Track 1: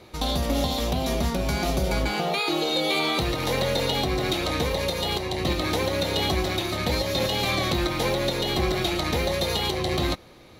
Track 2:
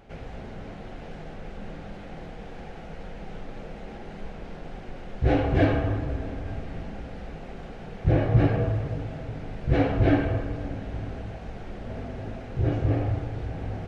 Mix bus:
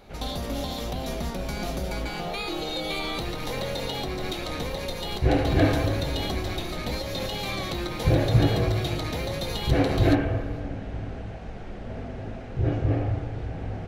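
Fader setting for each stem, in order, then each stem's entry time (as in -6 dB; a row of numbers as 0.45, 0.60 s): -6.5, 0.0 dB; 0.00, 0.00 s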